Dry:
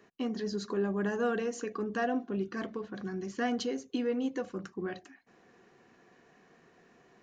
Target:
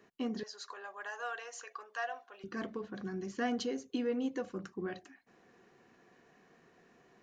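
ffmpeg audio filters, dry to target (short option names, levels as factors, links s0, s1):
-filter_complex "[0:a]asettb=1/sr,asplit=3[s0][s1][s2];[s0]atrim=end=0.434[s3];[s1]atrim=start=0.43:end=2.44,asetpts=PTS-STARTPTS,afade=t=in:d=0.004:c=qsin,afade=t=out:st=2.006:d=0.004:c=qsin,highpass=f=710:w=0.5412,highpass=f=710:w=1.3066[s4];[s2]atrim=start=2.436[s5];[s3][s4]acrossfade=d=0.004:c1=hsin:c2=qsin[s6];[s6][s5]acrossfade=d=0.004:c1=qsin:c2=hsin,volume=0.75"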